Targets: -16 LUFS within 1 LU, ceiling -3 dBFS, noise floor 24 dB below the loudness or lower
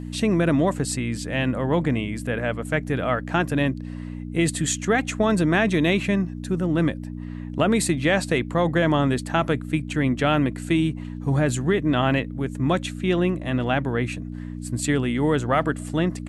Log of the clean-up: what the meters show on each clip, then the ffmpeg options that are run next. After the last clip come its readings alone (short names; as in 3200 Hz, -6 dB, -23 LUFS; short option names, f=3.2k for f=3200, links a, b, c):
hum 60 Hz; harmonics up to 300 Hz; hum level -30 dBFS; loudness -23.0 LUFS; peak -7.5 dBFS; loudness target -16.0 LUFS
-> -af "bandreject=f=60:t=h:w=4,bandreject=f=120:t=h:w=4,bandreject=f=180:t=h:w=4,bandreject=f=240:t=h:w=4,bandreject=f=300:t=h:w=4"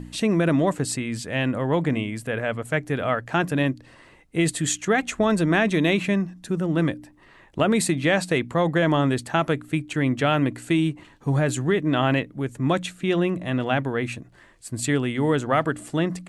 hum none; loudness -23.5 LUFS; peak -7.5 dBFS; loudness target -16.0 LUFS
-> -af "volume=7.5dB,alimiter=limit=-3dB:level=0:latency=1"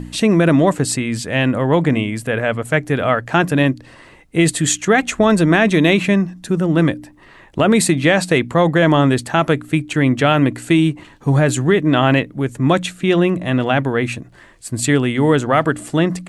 loudness -16.0 LUFS; peak -3.0 dBFS; noise floor -45 dBFS